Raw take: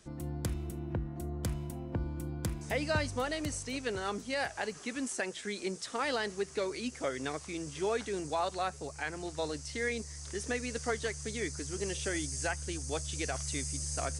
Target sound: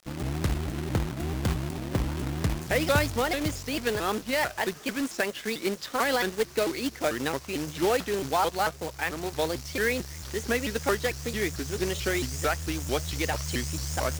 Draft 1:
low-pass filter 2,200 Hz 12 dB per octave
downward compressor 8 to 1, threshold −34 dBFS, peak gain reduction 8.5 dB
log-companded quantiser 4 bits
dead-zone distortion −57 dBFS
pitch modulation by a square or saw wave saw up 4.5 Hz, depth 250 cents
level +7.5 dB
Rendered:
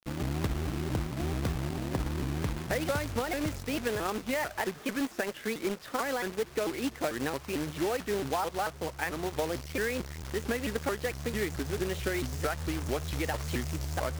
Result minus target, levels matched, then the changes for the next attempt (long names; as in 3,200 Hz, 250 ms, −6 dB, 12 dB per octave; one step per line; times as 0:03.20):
downward compressor: peak gain reduction +8.5 dB; 4,000 Hz band −2.5 dB
change: low-pass filter 5,000 Hz 12 dB per octave
remove: downward compressor 8 to 1, threshold −34 dBFS, peak gain reduction 8.5 dB